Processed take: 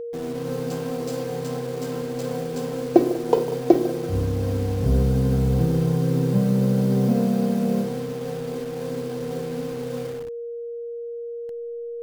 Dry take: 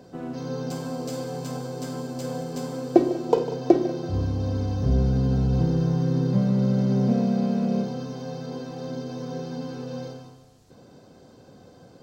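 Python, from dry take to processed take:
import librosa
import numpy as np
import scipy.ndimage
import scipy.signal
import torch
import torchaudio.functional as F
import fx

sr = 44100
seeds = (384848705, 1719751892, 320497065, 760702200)

y = fx.delta_hold(x, sr, step_db=-37.5)
y = y + 10.0 ** (-31.0 / 20.0) * np.sin(2.0 * np.pi * 470.0 * np.arange(len(y)) / sr)
y = y * 10.0 ** (1.5 / 20.0)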